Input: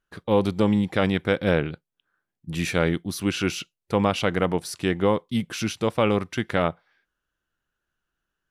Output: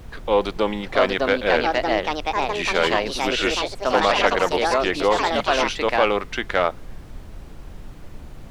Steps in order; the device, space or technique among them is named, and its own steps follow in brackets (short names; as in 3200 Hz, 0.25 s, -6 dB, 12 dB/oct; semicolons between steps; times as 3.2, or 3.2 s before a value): high shelf 5600 Hz +6.5 dB; echoes that change speed 0.731 s, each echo +4 st, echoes 3; aircraft cabin announcement (BPF 470–4100 Hz; soft clip -9.5 dBFS, distortion -23 dB; brown noise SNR 13 dB); gain +5.5 dB